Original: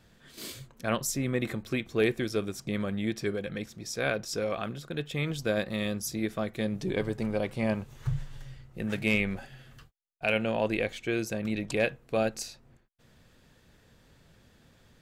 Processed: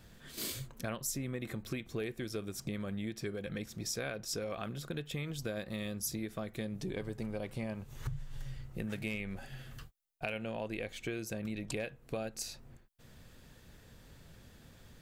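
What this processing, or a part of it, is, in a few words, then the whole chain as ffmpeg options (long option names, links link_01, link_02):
ASMR close-microphone chain: -af "lowshelf=frequency=110:gain=5.5,acompressor=threshold=-37dB:ratio=6,highshelf=frequency=9200:gain=8,volume=1dB"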